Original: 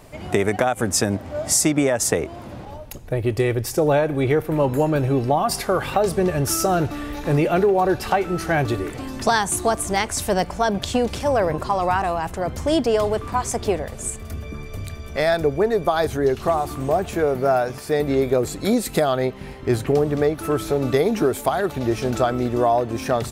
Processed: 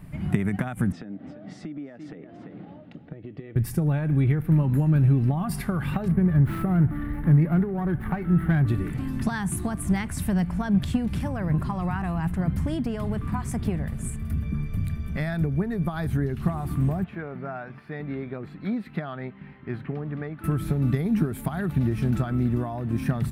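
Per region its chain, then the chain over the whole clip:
0.92–3.56 s: cabinet simulation 270–3800 Hz, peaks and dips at 290 Hz +7 dB, 480 Hz +6 dB, 690 Hz +4 dB, 1 kHz -9 dB, 1.6 kHz -4 dB, 2.4 kHz -5 dB + delay 340 ms -14.5 dB + compression 5:1, threshold -33 dBFS
6.08–8.67 s: brick-wall FIR band-stop 2.3–10 kHz + sliding maximum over 5 samples
17.04–20.44 s: high-pass 740 Hz 6 dB/octave + distance through air 330 m
whole clip: compression, threshold -20 dBFS; FFT filter 100 Hz 0 dB, 170 Hz +8 dB, 490 Hz -18 dB, 1.8 kHz -7 dB, 6.5 kHz -21 dB, 10 kHz -10 dB; trim +3.5 dB

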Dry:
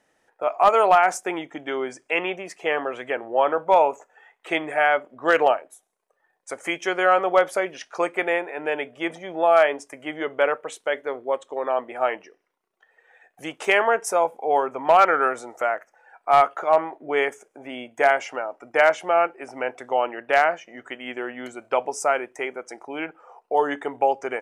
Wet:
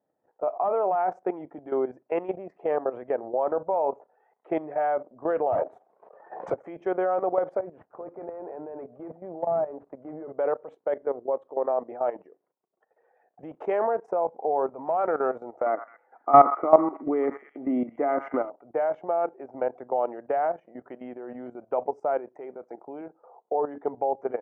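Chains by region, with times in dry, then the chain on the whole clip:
5.52–6.54 s: overdrive pedal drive 29 dB, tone 1.5 kHz, clips at -12 dBFS + swell ahead of each attack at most 76 dB/s
7.59–10.29 s: CVSD coder 32 kbps + low-pass 1.5 kHz + compression 4:1, threshold -25 dBFS
15.66–18.50 s: small resonant body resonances 280/1200/2000 Hz, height 15 dB, ringing for 30 ms + repeats whose band climbs or falls 107 ms, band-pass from 1.3 kHz, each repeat 0.7 oct, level -8.5 dB
23.01–23.60 s: high-pass 140 Hz + treble shelf 2.5 kHz -9.5 dB
whole clip: Chebyshev band-pass 110–730 Hz, order 2; level held to a coarse grid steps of 14 dB; trim +4 dB

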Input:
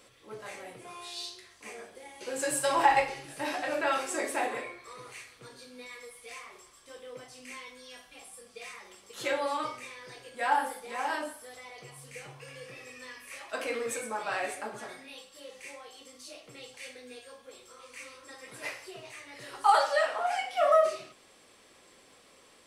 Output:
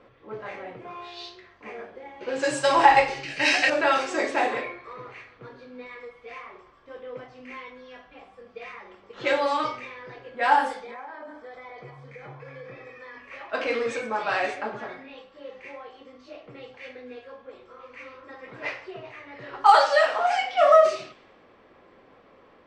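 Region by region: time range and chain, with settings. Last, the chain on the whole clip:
3.23–3.70 s: resonant high shelf 1.6 kHz +10.5 dB, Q 1.5 + band-stop 3.5 kHz, Q 5.3
10.83–13.18 s: hum notches 50/100/150/200/250/300/350/400 Hz + compression 16:1, threshold -42 dBFS + Butterworth band-stop 2.8 kHz, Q 6.7
whole clip: level-controlled noise filter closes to 1.4 kHz, open at -24.5 dBFS; low-pass 6.9 kHz 24 dB/octave; trim +7 dB

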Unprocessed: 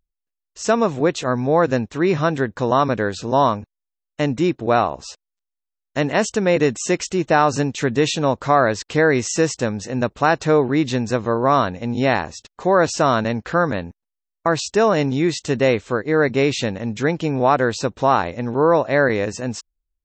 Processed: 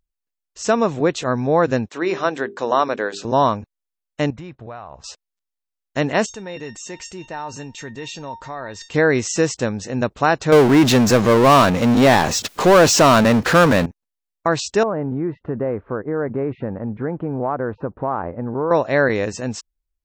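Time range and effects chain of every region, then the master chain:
1.89–3.25 s: high-pass 330 Hz + hum notches 50/100/150/200/250/300/350/400/450 Hz
4.30–5.04 s: low-pass 1.1 kHz 6 dB/octave + peaking EQ 310 Hz -15 dB 1.5 oct + compression 8:1, threshold -30 dBFS
6.26–8.94 s: feedback comb 910 Hz, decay 0.15 s, mix 90% + level flattener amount 50%
10.52–13.86 s: high-pass 110 Hz + power-law waveshaper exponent 0.5
14.83–18.71 s: low-pass 1.4 kHz 24 dB/octave + compression 2.5:1, threshold -20 dBFS
whole clip: none

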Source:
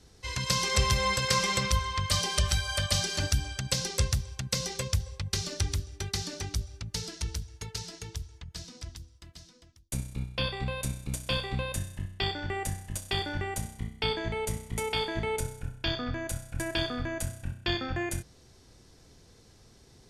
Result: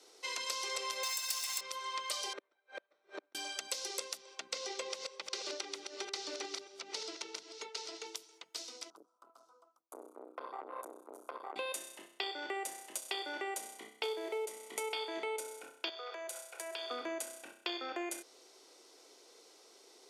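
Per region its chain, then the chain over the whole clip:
1.03–1.61 s: comb filter that takes the minimum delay 1.1 ms + tilt EQ +4.5 dB/octave
2.33–3.35 s: comb filter that takes the minimum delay 0.53 ms + low-pass 1.3 kHz + inverted gate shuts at -26 dBFS, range -35 dB
4.17–8.07 s: chunks repeated in reverse 313 ms, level -8.5 dB + distance through air 94 m
8.90–11.56 s: FFT filter 140 Hz 0 dB, 320 Hz -14 dB, 570 Hz -1 dB, 1.3 kHz +8 dB, 1.9 kHz -26 dB, 4.8 kHz -23 dB, 12 kHz -11 dB + compression 10:1, threshold -33 dBFS + transformer saturation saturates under 840 Hz
14.03–14.46 s: CVSD coder 64 kbps + resonant high-pass 390 Hz, resonance Q 2.7
15.89–16.91 s: steep high-pass 370 Hz 72 dB/octave + compression 5:1, threshold -39 dBFS
whole clip: steep high-pass 340 Hz 36 dB/octave; band-stop 1.7 kHz, Q 6.4; compression, threshold -37 dBFS; trim +1 dB

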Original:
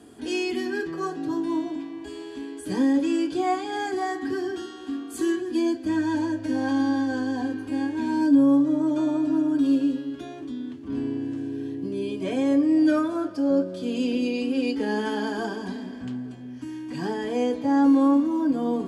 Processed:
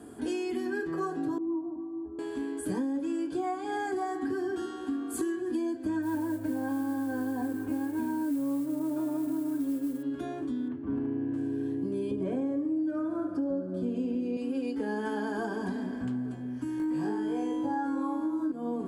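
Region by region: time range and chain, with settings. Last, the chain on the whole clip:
1.38–2.19 s: steep low-pass 1.3 kHz 72 dB/octave + inharmonic resonator 68 Hz, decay 0.32 s, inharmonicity 0.03
6.02–10.03 s: treble shelf 3.3 kHz -11 dB + modulation noise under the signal 22 dB
10.68–11.34 s: low-pass 2.3 kHz + hard clipper -21.5 dBFS
12.11–14.37 s: tilt EQ -2.5 dB/octave + feedback delay 70 ms, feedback 51%, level -9 dB
16.78–18.52 s: upward compressor, threshold -34 dBFS + flutter echo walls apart 3.3 m, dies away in 0.73 s
whole clip: compression 12:1, threshold -30 dBFS; high-order bell 3.9 kHz -8 dB; band-stop 1.9 kHz, Q 15; trim +2 dB

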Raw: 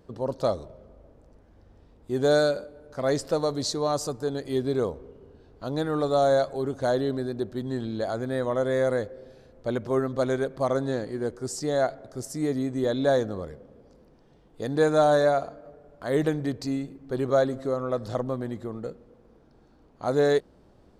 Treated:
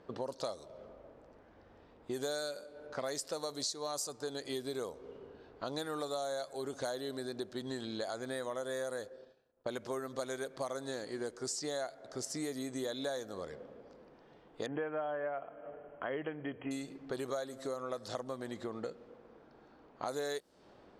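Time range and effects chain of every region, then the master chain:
8.61–9.67 s: expander -39 dBFS + band-stop 2.1 kHz, Q 6.3
14.66–16.71 s: brick-wall FIR low-pass 3.3 kHz + hum notches 60/120/180 Hz
whole clip: level-controlled noise filter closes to 2.1 kHz, open at -22 dBFS; RIAA curve recording; compression 6:1, threshold -40 dBFS; trim +3.5 dB

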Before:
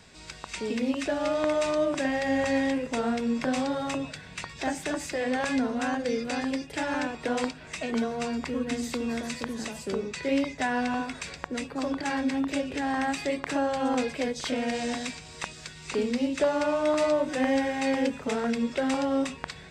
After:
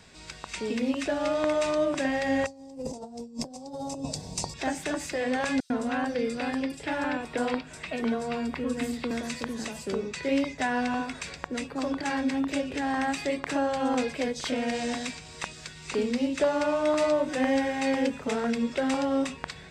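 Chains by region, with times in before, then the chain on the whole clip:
2.46–4.54 s: FFT filter 890 Hz 0 dB, 1.5 kHz -25 dB, 3.4 kHz -12 dB, 5 kHz +4 dB + compressor with a negative ratio -35 dBFS, ratio -0.5
5.60–9.11 s: dynamic bell 6.3 kHz, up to -7 dB, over -58 dBFS, Q 3.5 + bands offset in time highs, lows 100 ms, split 4.9 kHz
whole clip: none

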